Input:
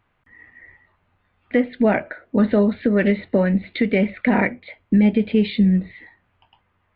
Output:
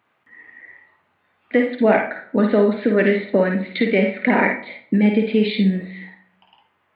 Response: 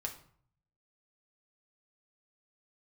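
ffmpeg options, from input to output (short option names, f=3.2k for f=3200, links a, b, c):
-filter_complex "[0:a]highpass=220,asplit=2[a][b];[1:a]atrim=start_sample=2205,lowshelf=f=250:g=-8.5,adelay=52[c];[b][c]afir=irnorm=-1:irlink=0,volume=-2dB[d];[a][d]amix=inputs=2:normalize=0,volume=2dB"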